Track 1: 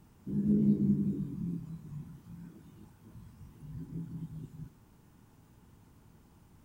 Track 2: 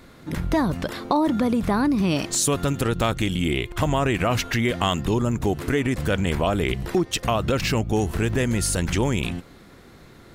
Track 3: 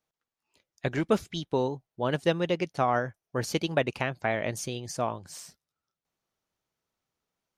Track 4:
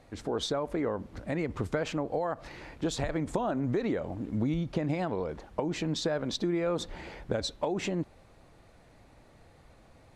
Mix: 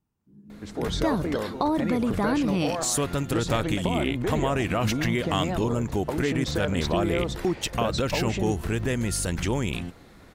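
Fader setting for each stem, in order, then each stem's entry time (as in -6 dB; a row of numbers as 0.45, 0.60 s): -19.5, -4.0, -14.0, +1.0 dB; 0.00, 0.50, 0.00, 0.50 s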